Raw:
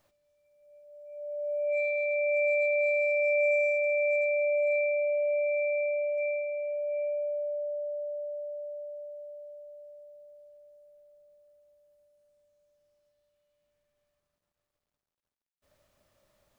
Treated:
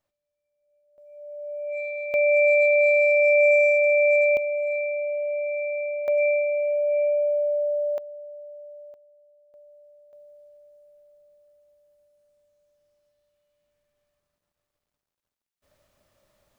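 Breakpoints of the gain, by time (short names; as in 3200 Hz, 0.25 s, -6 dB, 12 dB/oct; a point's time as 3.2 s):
-12 dB
from 0.98 s -2 dB
from 2.14 s +8 dB
from 4.37 s +0.5 dB
from 6.08 s +9 dB
from 7.98 s -3.5 dB
from 8.94 s -14 dB
from 9.54 s -4 dB
from 10.13 s +2.5 dB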